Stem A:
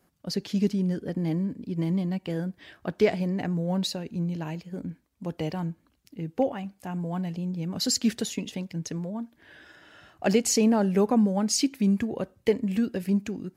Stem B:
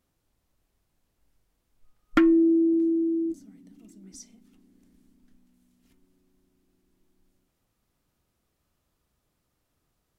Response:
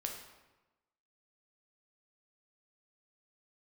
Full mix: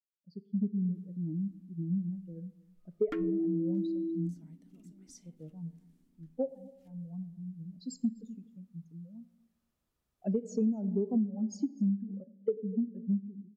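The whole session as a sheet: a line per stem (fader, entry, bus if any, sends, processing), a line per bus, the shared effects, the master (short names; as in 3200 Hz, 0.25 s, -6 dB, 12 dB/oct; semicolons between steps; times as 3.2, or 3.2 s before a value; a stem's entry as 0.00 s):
+0.5 dB, 0.00 s, send -9 dB, echo send -21 dB, spectral expander 2.5:1
+2.5 dB, 0.95 s, no send, no echo send, auto duck -11 dB, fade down 1.10 s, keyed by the first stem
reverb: on, RT60 1.1 s, pre-delay 8 ms
echo: echo 0.248 s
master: compressor 6:1, threshold -27 dBFS, peak gain reduction 14 dB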